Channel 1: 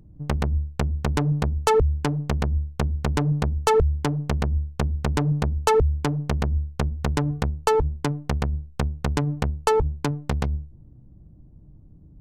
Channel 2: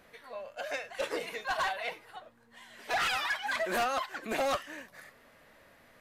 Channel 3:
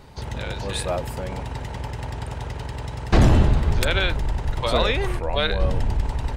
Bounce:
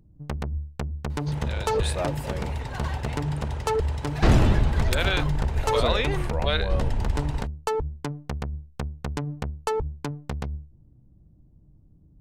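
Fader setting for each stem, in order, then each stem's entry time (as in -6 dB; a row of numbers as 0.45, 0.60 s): -6.5, -7.5, -3.0 dB; 0.00, 1.25, 1.10 s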